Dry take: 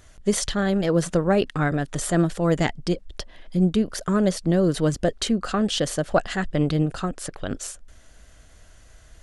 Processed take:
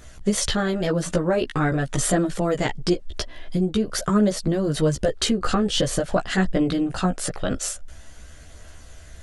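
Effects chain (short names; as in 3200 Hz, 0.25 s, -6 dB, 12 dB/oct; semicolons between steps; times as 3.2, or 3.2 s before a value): 5.4–5.99 low shelf 210 Hz +8.5 dB; compressor, threshold -23 dBFS, peak gain reduction 9 dB; chorus voices 2, 0.23 Hz, delay 15 ms, depth 1.7 ms; gain +9 dB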